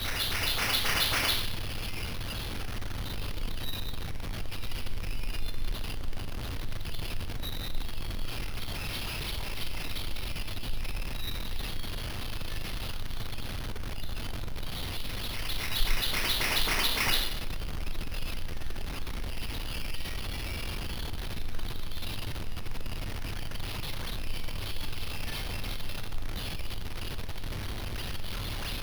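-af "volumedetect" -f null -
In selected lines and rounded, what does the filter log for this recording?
mean_volume: -29.9 dB
max_volume: -13.0 dB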